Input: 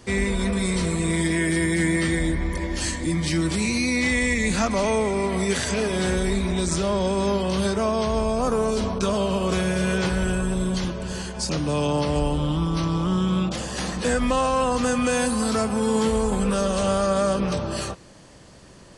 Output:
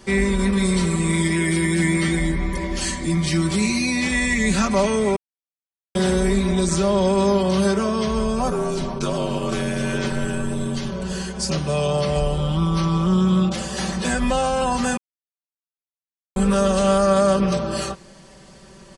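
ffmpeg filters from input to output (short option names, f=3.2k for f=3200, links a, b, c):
-filter_complex "[0:a]asettb=1/sr,asplit=3[a][b][c];[a]atrim=end=8.504[d];[b]atrim=start=8.5:end=10.92,asetpts=PTS-STARTPTS,afade=t=in:d=0.004:c=qsin,afade=t=out:st=2.416:d=0.004:c=qsin,aeval=exprs='val(0)*sin(2*PI*46*n/s)':c=same[e];[c]atrim=start=10.916[f];[d][e]acrossfade=d=0.004:c1=hsin:c2=qsin[g];[g][f]acrossfade=d=0.004:c1=qsin:c2=hsin,asplit=5[h][i][j][k][l];[h]atrim=end=5.16,asetpts=PTS-STARTPTS,afade=t=out:st=5.156:d=0.004:c=hsin[m];[i]atrim=start=5.16:end=5.95,asetpts=PTS-STARTPTS,volume=0[n];[j]atrim=start=5.95:end=14.97,asetpts=PTS-STARTPTS,afade=t=in:d=0.004:c=hsin,afade=t=out:st=9.016:d=0.004:c=hsin[o];[k]atrim=start=14.97:end=16.36,asetpts=PTS-STARTPTS,volume=0[p];[l]atrim=start=16.36,asetpts=PTS-STARTPTS,afade=t=in:d=0.004:c=hsin[q];[m][n][o][p][q]concat=n=5:v=0:a=1,aecho=1:1:5.2:0.83"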